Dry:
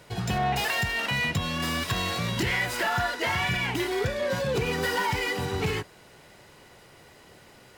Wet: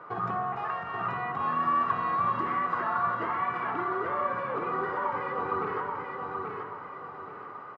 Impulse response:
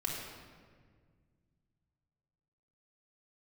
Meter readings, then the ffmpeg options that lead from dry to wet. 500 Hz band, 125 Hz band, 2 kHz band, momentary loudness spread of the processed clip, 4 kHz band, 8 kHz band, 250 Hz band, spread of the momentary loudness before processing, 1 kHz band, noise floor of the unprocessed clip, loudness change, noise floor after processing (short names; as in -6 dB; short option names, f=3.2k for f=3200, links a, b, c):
-4.5 dB, -12.5 dB, -8.5 dB, 13 LU, under -20 dB, under -35 dB, -6.5 dB, 3 LU, +4.0 dB, -53 dBFS, -3.0 dB, -43 dBFS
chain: -filter_complex "[0:a]highpass=210,acompressor=threshold=-35dB:ratio=12,lowpass=f=1.2k:t=q:w=11,aecho=1:1:831|1662|2493|3324:0.631|0.215|0.0729|0.0248,asplit=2[a][b];[1:a]atrim=start_sample=2205[c];[b][c]afir=irnorm=-1:irlink=0,volume=-6dB[d];[a][d]amix=inputs=2:normalize=0,volume=-2dB"